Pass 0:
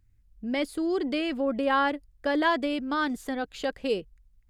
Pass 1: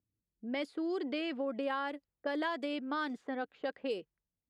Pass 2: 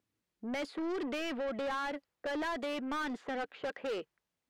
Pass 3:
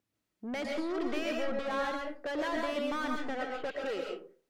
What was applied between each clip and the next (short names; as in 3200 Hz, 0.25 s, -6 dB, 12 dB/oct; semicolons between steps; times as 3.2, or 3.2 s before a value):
HPF 250 Hz 12 dB/oct; low-pass opened by the level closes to 470 Hz, open at -22.5 dBFS; compressor, threshold -27 dBFS, peak gain reduction 8 dB; gain -4.5 dB
overdrive pedal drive 26 dB, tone 2600 Hz, clips at -22.5 dBFS; gain -6 dB
reverb RT60 0.40 s, pre-delay 90 ms, DRR 0.5 dB